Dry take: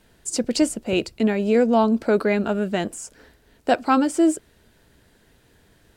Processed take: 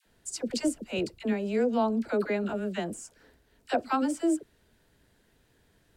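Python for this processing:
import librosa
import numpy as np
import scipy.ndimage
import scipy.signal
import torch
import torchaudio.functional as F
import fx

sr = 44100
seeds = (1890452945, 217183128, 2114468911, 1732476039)

y = fx.dispersion(x, sr, late='lows', ms=59.0, hz=770.0)
y = F.gain(torch.from_numpy(y), -8.5).numpy()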